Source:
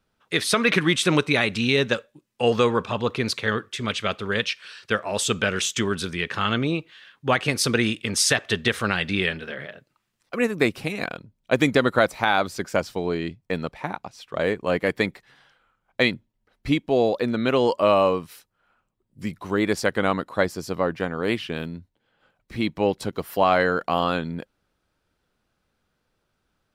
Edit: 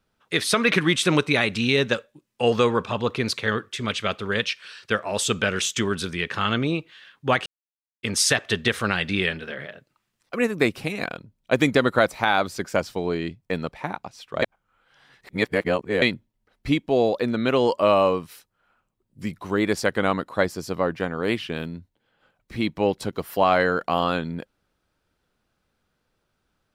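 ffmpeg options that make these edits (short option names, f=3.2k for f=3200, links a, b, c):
-filter_complex "[0:a]asplit=5[a][b][c][d][e];[a]atrim=end=7.46,asetpts=PTS-STARTPTS,afade=t=out:st=7.456:d=0.004:c=hsin[f];[b]atrim=start=7.46:end=8.03,asetpts=PTS-STARTPTS,volume=0[g];[c]atrim=start=8.03:end=14.422,asetpts=PTS-STARTPTS,afade=t=in:d=0.004:c=hsin[h];[d]atrim=start=14.418:end=16.022,asetpts=PTS-STARTPTS,areverse[i];[e]atrim=start=16.018[j];[f][g][h]concat=n=3:v=0:a=1[k];[k][i]acrossfade=d=0.004:c1=hsin:c2=hsin[l];[l][j]acrossfade=d=0.004:c1=hsin:c2=hsin"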